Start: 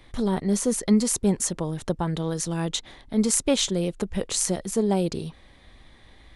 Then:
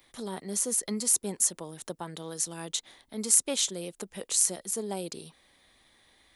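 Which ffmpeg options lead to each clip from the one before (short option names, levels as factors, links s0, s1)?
-filter_complex "[0:a]aemphasis=mode=production:type=bsi,acrossover=split=120[s0][s1];[s0]acompressor=threshold=0.00158:ratio=6[s2];[s2][s1]amix=inputs=2:normalize=0,volume=0.376"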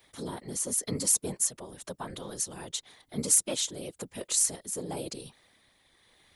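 -af "asoftclip=type=hard:threshold=0.447,tremolo=f=0.95:d=0.35,afftfilt=real='hypot(re,im)*cos(2*PI*random(0))':imag='hypot(re,im)*sin(2*PI*random(1))':win_size=512:overlap=0.75,volume=2.11"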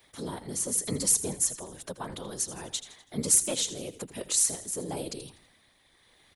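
-filter_complex "[0:a]asplit=5[s0][s1][s2][s3][s4];[s1]adelay=82,afreqshift=-60,volume=0.2[s5];[s2]adelay=164,afreqshift=-120,volume=0.0902[s6];[s3]adelay=246,afreqshift=-180,volume=0.0403[s7];[s4]adelay=328,afreqshift=-240,volume=0.0182[s8];[s0][s5][s6][s7][s8]amix=inputs=5:normalize=0,volume=1.12"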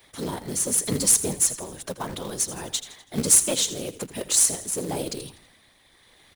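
-af "acrusher=bits=3:mode=log:mix=0:aa=0.000001,volume=1.88"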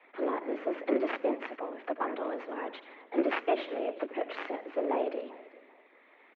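-af "aeval=exprs='(mod(2.51*val(0)+1,2)-1)/2.51':c=same,aecho=1:1:392|784:0.1|0.027,highpass=f=160:t=q:w=0.5412,highpass=f=160:t=q:w=1.307,lowpass=f=2400:t=q:w=0.5176,lowpass=f=2400:t=q:w=0.7071,lowpass=f=2400:t=q:w=1.932,afreqshift=110"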